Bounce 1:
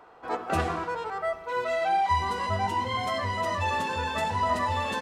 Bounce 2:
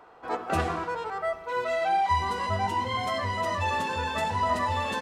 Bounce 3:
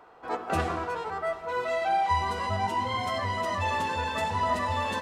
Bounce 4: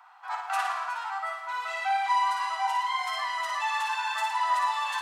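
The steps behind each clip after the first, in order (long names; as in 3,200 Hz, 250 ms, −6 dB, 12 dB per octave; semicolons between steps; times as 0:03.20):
no processing that can be heard
delay that swaps between a low-pass and a high-pass 183 ms, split 1,200 Hz, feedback 75%, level −12 dB; level −1 dB
Chebyshev high-pass filter 790 Hz, order 5; flutter between parallel walls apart 9.7 metres, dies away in 0.61 s; level +1.5 dB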